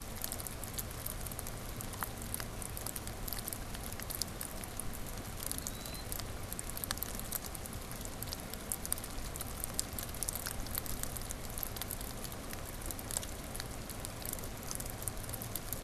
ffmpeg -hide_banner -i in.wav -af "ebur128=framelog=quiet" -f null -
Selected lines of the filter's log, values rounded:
Integrated loudness:
  I:         -40.4 LUFS
  Threshold: -50.4 LUFS
Loudness range:
  LRA:         2.0 LU
  Threshold: -60.3 LUFS
  LRA low:   -41.1 LUFS
  LRA high:  -39.0 LUFS